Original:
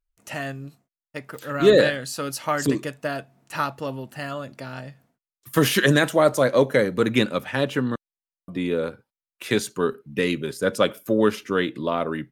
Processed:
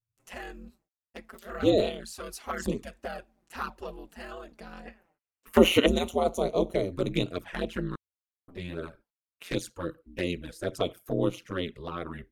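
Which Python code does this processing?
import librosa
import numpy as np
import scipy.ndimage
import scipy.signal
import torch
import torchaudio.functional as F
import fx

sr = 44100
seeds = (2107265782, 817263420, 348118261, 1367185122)

y = fx.spec_box(x, sr, start_s=4.86, length_s=1.01, low_hz=290.0, high_hz=3000.0, gain_db=11)
y = y * np.sin(2.0 * np.pi * 89.0 * np.arange(len(y)) / sr)
y = fx.env_flanger(y, sr, rest_ms=7.8, full_db=-20.0)
y = F.gain(torch.from_numpy(y), -4.0).numpy()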